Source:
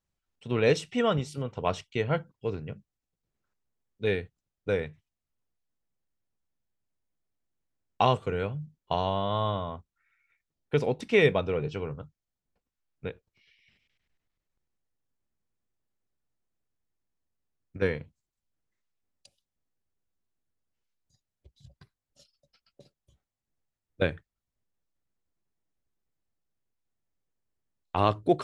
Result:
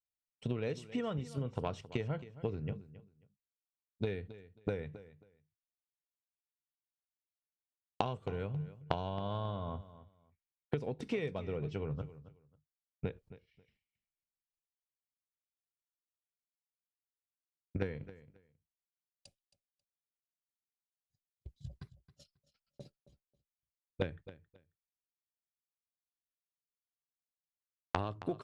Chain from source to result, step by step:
downward expander −54 dBFS
low-shelf EQ 390 Hz +8 dB
downward compressor 16 to 1, threshold −34 dBFS, peak gain reduction 22 dB
harmonic generator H 3 −15 dB, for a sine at −18 dBFS
on a send: repeating echo 270 ms, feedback 20%, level −16 dB
on the sum: level +7 dB

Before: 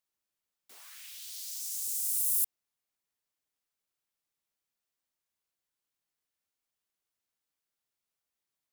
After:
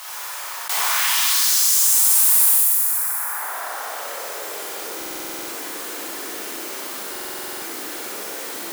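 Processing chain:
dense smooth reverb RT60 4.4 s, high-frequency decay 0.25×, DRR −9.5 dB
in parallel at −6 dB: wave folding −26.5 dBFS
on the sum: high-pass filter sweep 930 Hz → 320 Hz, 0:03.24–0:05.12
on a send: flutter between parallel walls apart 10.3 metres, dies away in 0.7 s
on the sum: buffer that repeats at 0:04.97/0:07.11, samples 2,048, times 10
envelope flattener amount 70%
level +6 dB

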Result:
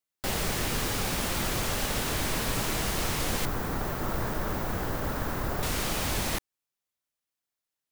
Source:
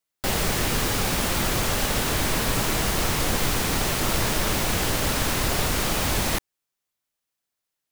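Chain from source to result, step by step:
0:03.45–0:05.63: flat-topped bell 5,200 Hz −12 dB 2.8 octaves
level −5.5 dB

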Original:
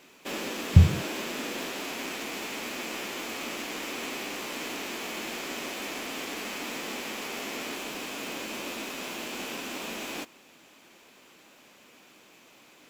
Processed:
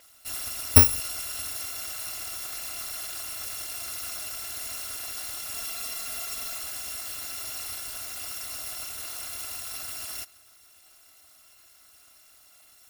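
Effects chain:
samples in bit-reversed order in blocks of 256 samples
0:05.54–0:06.58: comb filter 4.4 ms

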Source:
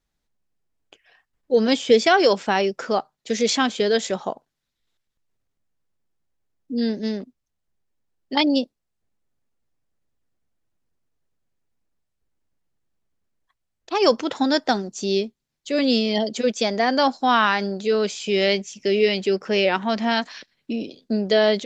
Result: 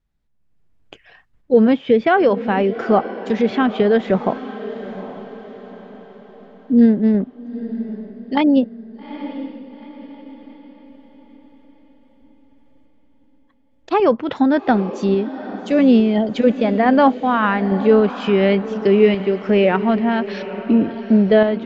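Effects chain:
dynamic equaliser 3,100 Hz, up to +5 dB, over −35 dBFS, Q 1
sample-and-hold tremolo
automatic gain control gain up to 11.5 dB
bass and treble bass +9 dB, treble −10 dB
treble cut that deepens with the level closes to 1,600 Hz, closed at −13.5 dBFS
feedback delay with all-pass diffusion 837 ms, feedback 44%, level −13 dB

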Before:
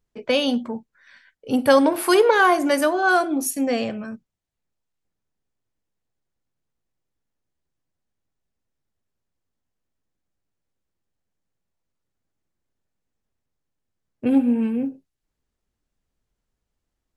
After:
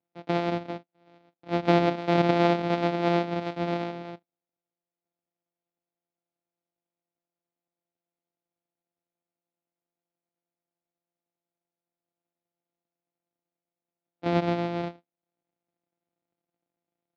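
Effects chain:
samples sorted by size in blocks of 256 samples
loudspeaker in its box 230–3,700 Hz, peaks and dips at 280 Hz +6 dB, 710 Hz +6 dB, 1,100 Hz −6 dB, 1,700 Hz −6 dB, 2,900 Hz −5 dB
level −4.5 dB

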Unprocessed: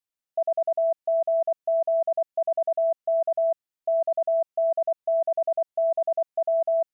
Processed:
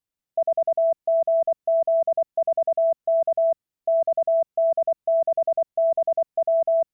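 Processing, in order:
low-shelf EQ 370 Hz +11.5 dB

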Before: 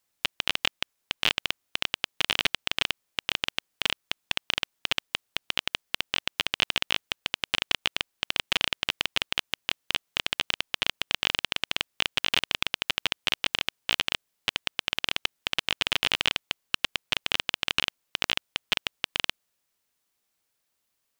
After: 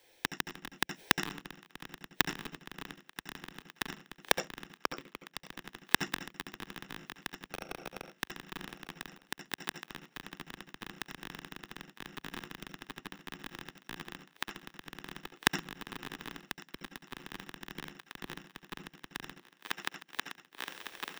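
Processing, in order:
parametric band 63 Hz −12.5 dB 0.68 octaves
phaser with its sweep stopped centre 490 Hz, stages 4
0:04.75–0:05.45: low-pass that shuts in the quiet parts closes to 440 Hz, open at −31 dBFS
in parallel at −4 dB: soft clipping −24.5 dBFS, distortion −5 dB
0:07.50–0:08.15: on the sum: leveller curve on the samples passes 2
wrap-around overflow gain 21.5 dB
feedback echo with a high-pass in the loop 1,153 ms, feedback 37%, high-pass 400 Hz, level −15.5 dB
0:09.12–0:09.82: downward compressor 4 to 1, threshold −52 dBFS, peak gain reduction 17 dB
parametric band 16,000 Hz −12.5 dB 1.3 octaves
automatic gain control gain up to 9.5 dB
gate with flip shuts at −31 dBFS, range −30 dB
convolution reverb RT60 0.15 s, pre-delay 68 ms, DRR 9.5 dB
level +12 dB

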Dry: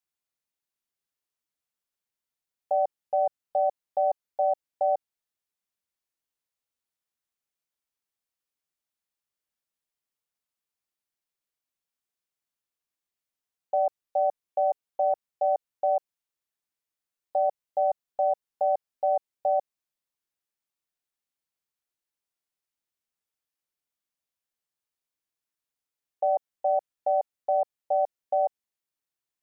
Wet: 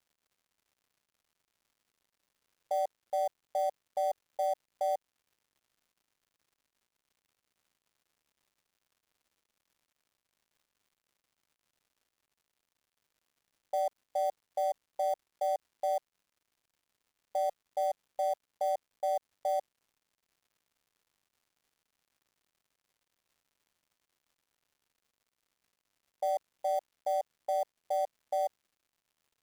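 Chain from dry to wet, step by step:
gap after every zero crossing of 0.058 ms
surface crackle 220 per second −55 dBFS
buffer that repeats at 0:17.50, samples 256, times 5
level −6.5 dB

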